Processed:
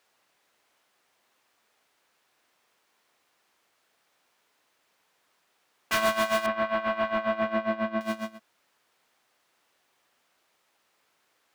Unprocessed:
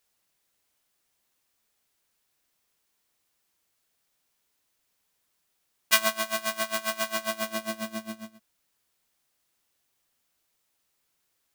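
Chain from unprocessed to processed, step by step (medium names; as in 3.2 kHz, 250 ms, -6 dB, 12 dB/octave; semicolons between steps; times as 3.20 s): overdrive pedal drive 30 dB, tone 1.2 kHz, clips at -1 dBFS; 6.46–8.01 s: distance through air 400 m; trim -7.5 dB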